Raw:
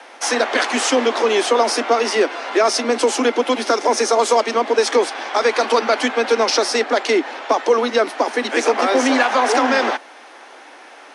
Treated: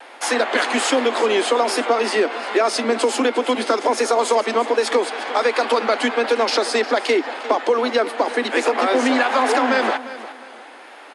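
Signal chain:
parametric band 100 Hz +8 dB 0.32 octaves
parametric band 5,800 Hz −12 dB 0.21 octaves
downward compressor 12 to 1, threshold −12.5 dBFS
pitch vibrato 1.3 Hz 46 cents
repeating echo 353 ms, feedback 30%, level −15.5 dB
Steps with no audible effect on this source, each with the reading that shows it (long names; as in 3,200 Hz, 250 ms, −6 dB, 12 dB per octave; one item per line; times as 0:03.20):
parametric band 100 Hz: nothing at its input below 200 Hz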